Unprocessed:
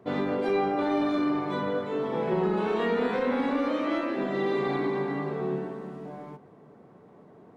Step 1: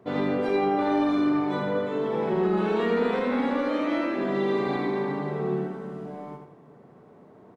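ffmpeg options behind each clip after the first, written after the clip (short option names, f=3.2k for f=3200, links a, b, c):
-af "aecho=1:1:81|162|243|324:0.531|0.165|0.051|0.0158"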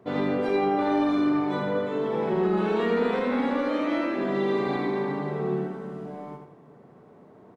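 -af anull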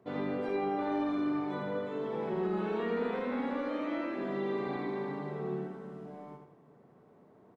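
-filter_complex "[0:a]acrossover=split=3300[a][b];[b]acompressor=threshold=-53dB:ratio=4:attack=1:release=60[c];[a][c]amix=inputs=2:normalize=0,volume=-8.5dB"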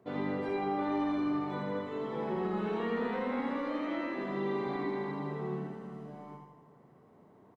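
-af "aecho=1:1:82|164|246|328|410|492|574:0.422|0.236|0.132|0.0741|0.0415|0.0232|0.013"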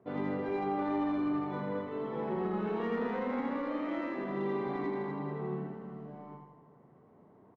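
-af "adynamicsmooth=sensitivity=3.5:basefreq=2.7k"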